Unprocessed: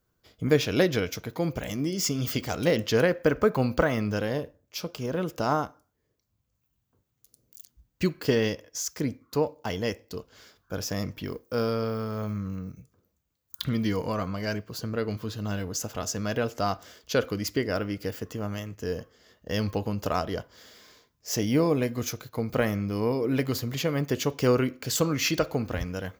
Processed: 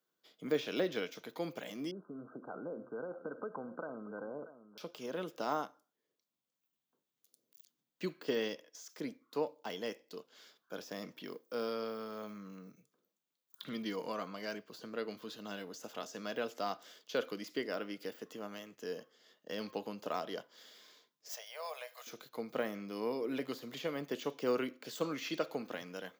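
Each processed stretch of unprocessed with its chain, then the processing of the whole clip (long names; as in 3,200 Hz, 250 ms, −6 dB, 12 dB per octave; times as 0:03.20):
0:01.91–0:04.78: downward compressor, threshold −28 dBFS + linear-phase brick-wall low-pass 1,600 Hz + single-tap delay 634 ms −13.5 dB
0:21.29–0:22.07: elliptic high-pass filter 600 Hz, stop band 50 dB + high-shelf EQ 5,500 Hz +11 dB
whole clip: Bessel high-pass filter 290 Hz, order 8; de-essing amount 95%; parametric band 3,500 Hz +6 dB 0.54 octaves; level −8 dB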